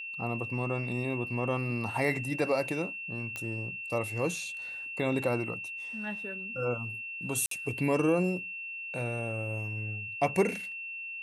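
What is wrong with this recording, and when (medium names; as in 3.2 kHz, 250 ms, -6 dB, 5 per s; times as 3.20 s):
whine 2.7 kHz -37 dBFS
3.36 s: pop -21 dBFS
7.46–7.51 s: dropout 53 ms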